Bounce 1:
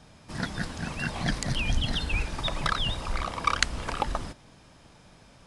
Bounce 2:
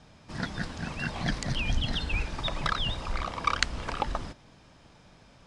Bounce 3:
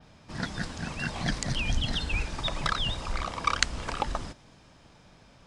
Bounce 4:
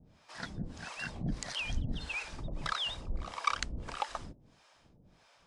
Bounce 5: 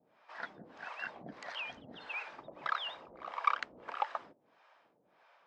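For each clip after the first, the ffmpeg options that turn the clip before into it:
-af "lowpass=6900,volume=0.841"
-af "adynamicequalizer=threshold=0.00224:dfrequency=8200:dqfactor=0.88:tfrequency=8200:tqfactor=0.88:attack=5:release=100:ratio=0.375:range=3:mode=boostabove:tftype=bell"
-filter_complex "[0:a]acrossover=split=530[s0][s1];[s0]aeval=exprs='val(0)*(1-1/2+1/2*cos(2*PI*1.6*n/s))':c=same[s2];[s1]aeval=exprs='val(0)*(1-1/2-1/2*cos(2*PI*1.6*n/s))':c=same[s3];[s2][s3]amix=inputs=2:normalize=0,volume=0.708"
-af "highpass=540,lowpass=2000,volume=1.33"

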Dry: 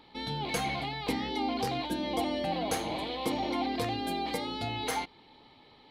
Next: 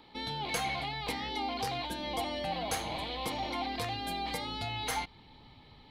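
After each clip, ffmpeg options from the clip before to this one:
-filter_complex "[0:a]asubboost=boost=5:cutoff=160,acrossover=split=510|2900[s0][s1][s2];[s0]acompressor=threshold=0.00794:ratio=4[s3];[s3][s1][s2]amix=inputs=3:normalize=0"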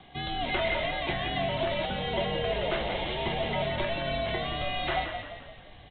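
-filter_complex "[0:a]afreqshift=-120,aresample=8000,acrusher=bits=4:mode=log:mix=0:aa=0.000001,aresample=44100,asplit=7[s0][s1][s2][s3][s4][s5][s6];[s1]adelay=173,afreqshift=-36,volume=0.447[s7];[s2]adelay=346,afreqshift=-72,volume=0.209[s8];[s3]adelay=519,afreqshift=-108,volume=0.0989[s9];[s4]adelay=692,afreqshift=-144,volume=0.0462[s10];[s5]adelay=865,afreqshift=-180,volume=0.0219[s11];[s6]adelay=1038,afreqshift=-216,volume=0.0102[s12];[s0][s7][s8][s9][s10][s11][s12]amix=inputs=7:normalize=0,volume=1.78"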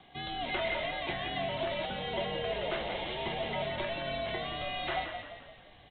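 -af "lowshelf=f=140:g=-7,volume=0.631"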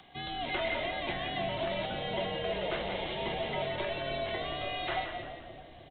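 -filter_complex "[0:a]acrossover=split=630[s0][s1];[s0]aecho=1:1:306|612|918|1224|1530|1836|2142:0.596|0.322|0.174|0.0938|0.0506|0.0274|0.0148[s2];[s1]acompressor=mode=upward:threshold=0.00158:ratio=2.5[s3];[s2][s3]amix=inputs=2:normalize=0"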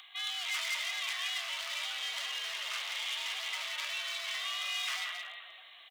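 -af "asoftclip=type=hard:threshold=0.0168,aexciter=amount=6.3:drive=4:freq=2000,highpass=f=1200:t=q:w=5.2,volume=0.355"

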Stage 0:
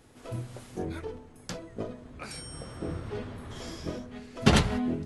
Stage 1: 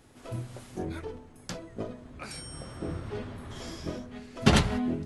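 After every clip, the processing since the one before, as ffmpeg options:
-af "bandreject=f=470:w=14"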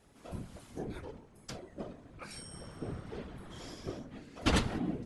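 -af "afftfilt=real='hypot(re,im)*cos(2*PI*random(0))':imag='hypot(re,im)*sin(2*PI*random(1))':win_size=512:overlap=0.75"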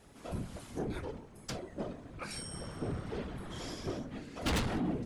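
-af "asoftclip=type=tanh:threshold=0.0224,volume=1.78"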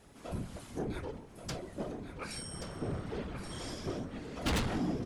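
-af "aecho=1:1:1129:0.376"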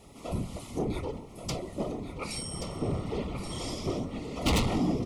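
-af "asuperstop=centerf=1600:order=4:qfactor=2.6,volume=2"

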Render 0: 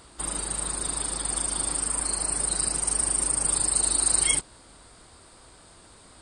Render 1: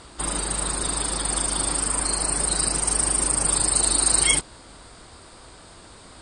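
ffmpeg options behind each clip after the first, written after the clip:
-af "lowpass=8100,volume=2.11"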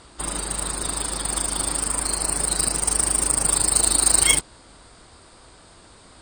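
-af "aeval=exprs='0.562*(cos(1*acos(clip(val(0)/0.562,-1,1)))-cos(1*PI/2))+0.0398*(cos(7*acos(clip(val(0)/0.562,-1,1)))-cos(7*PI/2))':c=same,volume=1.41"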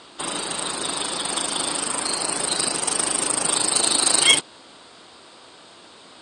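-af "highpass=230,lowpass=3700,aexciter=amount=2.9:drive=2.9:freq=2800,volume=1.5"

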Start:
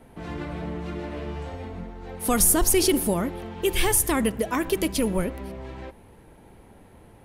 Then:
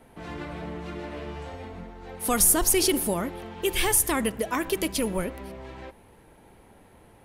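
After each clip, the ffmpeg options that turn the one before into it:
-af "lowshelf=f=400:g=-5.5"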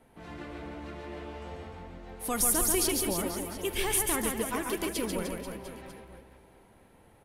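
-af "aecho=1:1:140|301|486.2|699.1|943.9:0.631|0.398|0.251|0.158|0.1,volume=0.447"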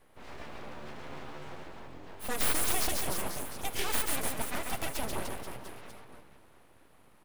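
-af "aeval=exprs='abs(val(0))':c=same,acrusher=bits=9:mode=log:mix=0:aa=0.000001"

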